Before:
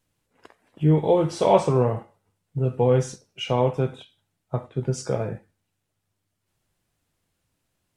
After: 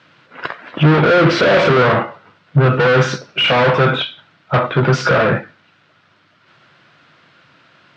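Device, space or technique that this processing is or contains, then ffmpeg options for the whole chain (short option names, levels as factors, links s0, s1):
overdrive pedal into a guitar cabinet: -filter_complex "[0:a]asettb=1/sr,asplit=3[s0][s1][s2];[s0]atrim=end=1.024[s3];[s1]atrim=start=1.02:end=1.82,asetpts=PTS-STARTPTS,afade=t=in:d=0.004:c=qsin,afade=t=out:st=0.796:d=0.004:c=qsin,equalizer=f=250:t=o:w=1:g=6,equalizer=f=500:t=o:w=1:g=7,equalizer=f=1000:t=o:w=1:g=-12,equalizer=f=2000:t=o:w=1:g=9[s4];[s2]atrim=start=1.816[s5];[s3][s4]acrossfade=d=0.004:c1=hsin:c2=qsin[s6];[s6][s5]acrossfade=d=0.004:c1=qsin:c2=hsin,asplit=2[s7][s8];[s8]highpass=f=720:p=1,volume=112,asoftclip=type=tanh:threshold=0.841[s9];[s7][s9]amix=inputs=2:normalize=0,lowpass=f=2700:p=1,volume=0.501,highpass=110,equalizer=f=140:t=q:w=4:g=8,equalizer=f=440:t=q:w=4:g=-5,equalizer=f=810:t=q:w=4:g=-6,equalizer=f=1400:t=q:w=4:g=7,lowpass=f=4500:w=0.5412,lowpass=f=4500:w=1.3066,volume=0.75"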